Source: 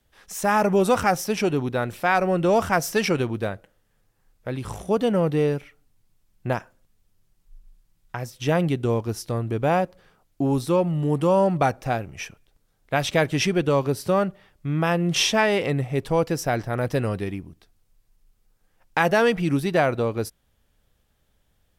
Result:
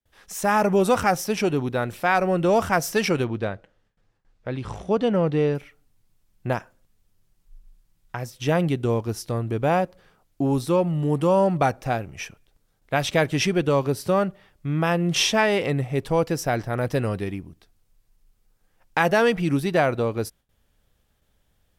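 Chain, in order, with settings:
0:03.24–0:05.55: low-pass filter 5,100 Hz 12 dB per octave
noise gate with hold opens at −58 dBFS

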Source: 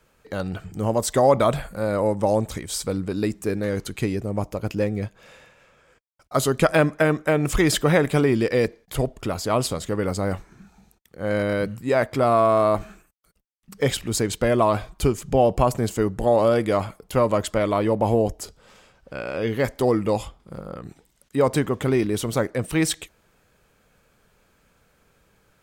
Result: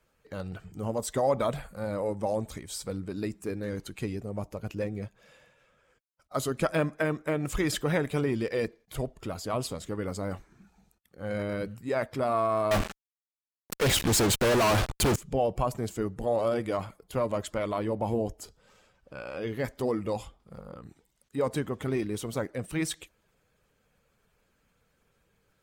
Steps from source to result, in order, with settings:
spectral magnitudes quantised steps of 15 dB
0:12.71–0:15.16: fuzz pedal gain 40 dB, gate −39 dBFS
level −8.5 dB

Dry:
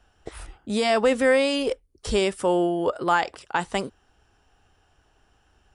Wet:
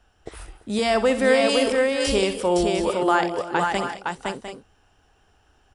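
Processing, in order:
0:01.49–0:02.12: high-shelf EQ 4,100 Hz +9.5 dB
on a send: multi-tap delay 62/207/339/512/702/735 ms −12/−19/−20/−3.5/−11/−13.5 dB

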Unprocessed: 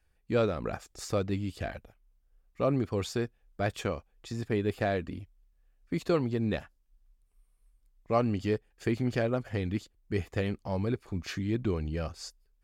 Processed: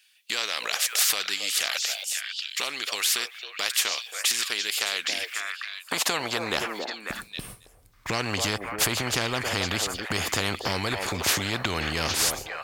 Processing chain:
noise gate with hold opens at −55 dBFS
downward compressor 5 to 1, threshold −43 dBFS, peak gain reduction 19.5 dB
echo through a band-pass that steps 272 ms, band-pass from 590 Hz, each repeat 1.4 octaves, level −9 dB
high-pass filter sweep 3,100 Hz → 92 Hz, 0:04.95–0:07.80
boost into a limiter +32.5 dB
every bin compressed towards the loudest bin 4 to 1
level −6.5 dB

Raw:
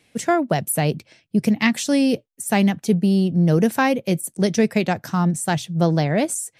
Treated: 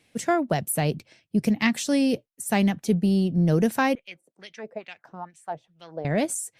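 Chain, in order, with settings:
0:03.95–0:06.05: LFO wah 2.3 Hz 460–3,000 Hz, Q 3.6
level −4 dB
Opus 64 kbit/s 48,000 Hz

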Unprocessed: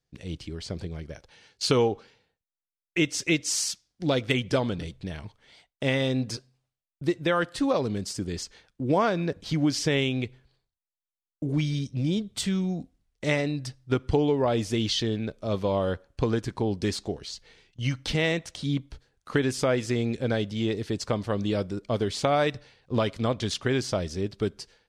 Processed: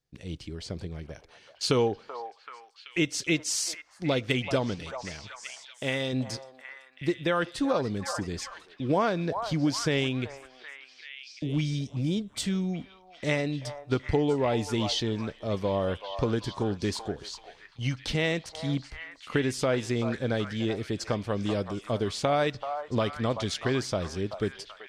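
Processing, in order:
0:04.75–0:06.13: low-shelf EQ 430 Hz −6 dB
echo through a band-pass that steps 383 ms, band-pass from 900 Hz, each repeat 0.7 octaves, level −4.5 dB
level −2 dB

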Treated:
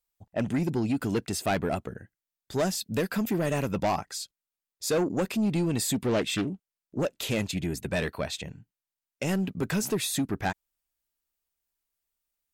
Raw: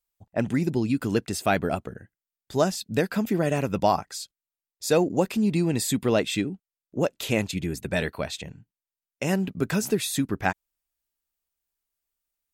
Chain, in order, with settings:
0:02.61–0:03.71: high-shelf EQ 11,000 Hz +7.5 dB
soft clipping −20.5 dBFS, distortion −11 dB
0:05.95–0:07.02: highs frequency-modulated by the lows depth 0.33 ms

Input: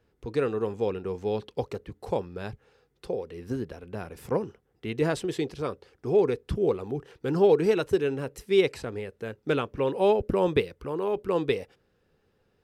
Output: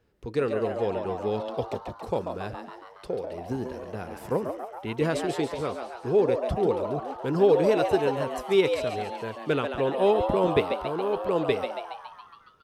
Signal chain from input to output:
echo with shifted repeats 139 ms, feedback 62%, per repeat +120 Hz, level −7 dB

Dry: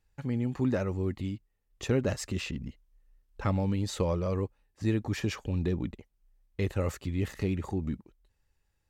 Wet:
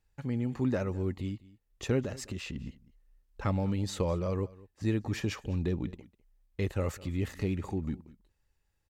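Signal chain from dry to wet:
0:02.02–0:02.56: downward compressor 4 to 1, threshold −33 dBFS, peak gain reduction 7.5 dB
on a send: single-tap delay 203 ms −21 dB
on the sum: level −1.5 dB

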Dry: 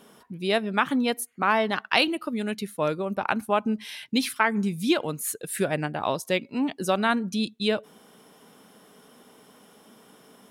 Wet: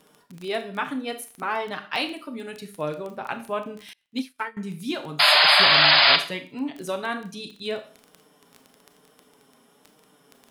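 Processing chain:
0:05.19–0:06.16: sound drawn into the spectrogram noise 570–5,100 Hz −11 dBFS
flanger 1.1 Hz, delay 6.4 ms, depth 1.2 ms, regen −15%
surface crackle 12 per second −28 dBFS
four-comb reverb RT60 0.4 s, combs from 27 ms, DRR 8 dB
0:03.93–0:04.57: expander for the loud parts 2.5 to 1, over −40 dBFS
level −2 dB

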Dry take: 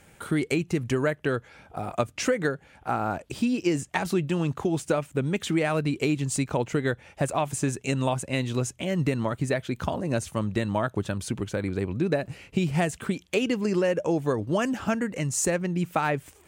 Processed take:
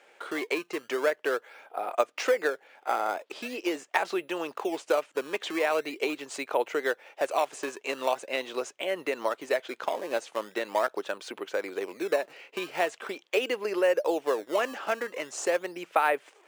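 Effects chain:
low-pass filter 4,400 Hz 12 dB per octave
in parallel at −11 dB: sample-and-hold swept by an LFO 18×, swing 160% 0.42 Hz
on the sum: high-pass filter 420 Hz 24 dB per octave

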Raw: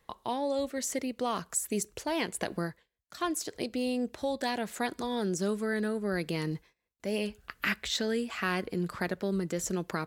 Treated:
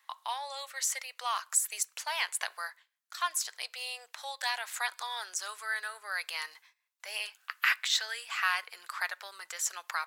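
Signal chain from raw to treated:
inverse Chebyshev high-pass filter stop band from 280 Hz, stop band 60 dB
on a send: convolution reverb RT60 0.50 s, pre-delay 3 ms, DRR 20.5 dB
on the sum: level +4 dB

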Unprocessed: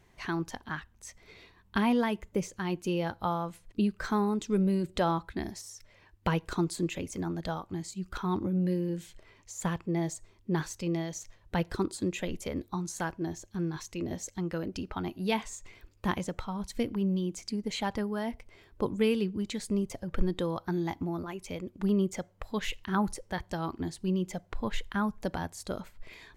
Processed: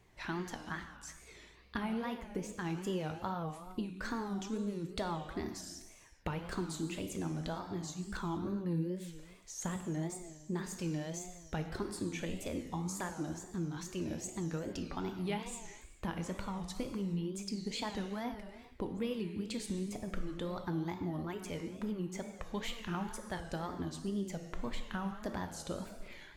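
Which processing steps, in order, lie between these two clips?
downward compressor, threshold −31 dBFS, peak gain reduction 12.5 dB
reverb whose tail is shaped and stops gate 480 ms falling, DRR 5 dB
tape wow and flutter 150 cents
level −3.5 dB

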